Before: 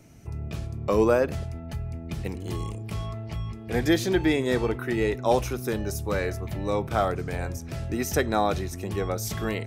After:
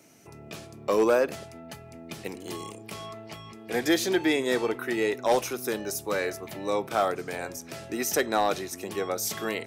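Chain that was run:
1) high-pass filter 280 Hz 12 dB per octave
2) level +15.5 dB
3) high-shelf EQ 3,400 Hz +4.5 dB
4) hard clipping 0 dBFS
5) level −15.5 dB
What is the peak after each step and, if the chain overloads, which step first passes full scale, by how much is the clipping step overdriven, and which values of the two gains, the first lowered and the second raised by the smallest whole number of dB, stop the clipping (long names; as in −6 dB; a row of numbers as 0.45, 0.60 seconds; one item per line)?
−10.5, +5.0, +5.5, 0.0, −15.5 dBFS
step 2, 5.5 dB
step 2 +9.5 dB, step 5 −9.5 dB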